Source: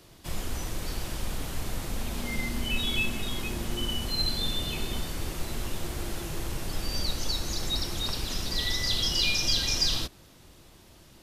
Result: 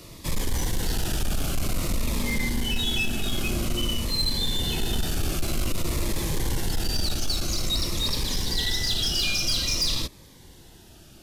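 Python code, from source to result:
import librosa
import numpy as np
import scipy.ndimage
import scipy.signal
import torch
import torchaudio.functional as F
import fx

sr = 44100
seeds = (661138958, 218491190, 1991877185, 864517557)

p1 = fx.rider(x, sr, range_db=5, speed_s=0.5)
p2 = x + (p1 * librosa.db_to_amplitude(2.0))
p3 = 10.0 ** (-18.5 / 20.0) * np.tanh(p2 / 10.0 ** (-18.5 / 20.0))
y = fx.notch_cascade(p3, sr, direction='falling', hz=0.51)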